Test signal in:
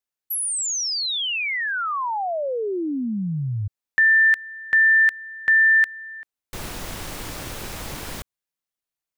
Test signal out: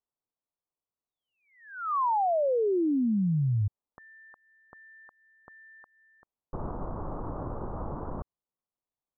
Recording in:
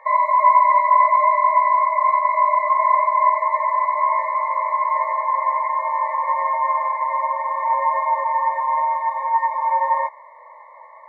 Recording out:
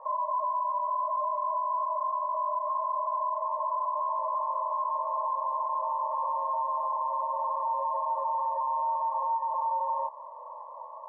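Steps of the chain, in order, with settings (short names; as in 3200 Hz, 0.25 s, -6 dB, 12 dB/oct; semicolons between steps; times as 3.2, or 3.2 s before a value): dynamic EQ 700 Hz, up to +3 dB, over -25 dBFS, Q 1; compressor 6:1, threshold -23 dBFS; limiter -23.5 dBFS; steep low-pass 1200 Hz 48 dB/oct; gain +1 dB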